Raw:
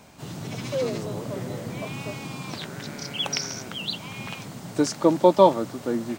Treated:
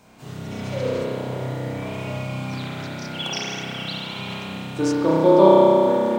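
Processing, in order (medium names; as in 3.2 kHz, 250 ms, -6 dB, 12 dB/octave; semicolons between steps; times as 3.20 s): spring tank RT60 3.1 s, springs 31 ms, chirp 40 ms, DRR -8 dB; trim -4.5 dB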